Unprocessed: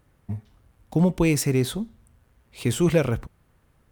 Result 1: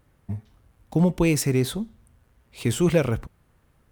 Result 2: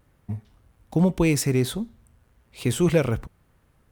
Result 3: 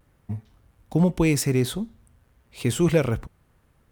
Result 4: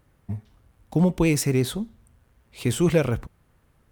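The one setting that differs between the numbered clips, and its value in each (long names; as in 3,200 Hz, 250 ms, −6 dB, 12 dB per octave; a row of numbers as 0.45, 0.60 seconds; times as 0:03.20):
pitch vibrato, speed: 2.5, 1.2, 0.55, 12 Hertz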